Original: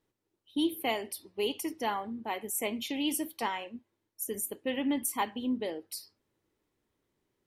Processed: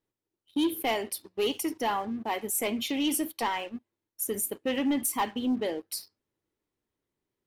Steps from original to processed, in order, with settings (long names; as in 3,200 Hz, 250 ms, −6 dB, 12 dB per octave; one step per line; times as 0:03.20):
leveller curve on the samples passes 2
level −2.5 dB